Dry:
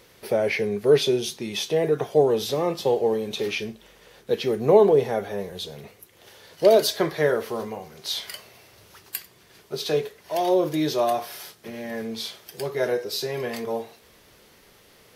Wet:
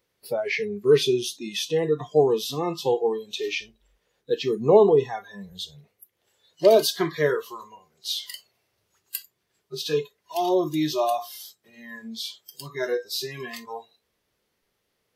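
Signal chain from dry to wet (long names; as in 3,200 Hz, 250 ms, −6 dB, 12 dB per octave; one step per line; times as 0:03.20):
noise reduction from a noise print of the clip's start 21 dB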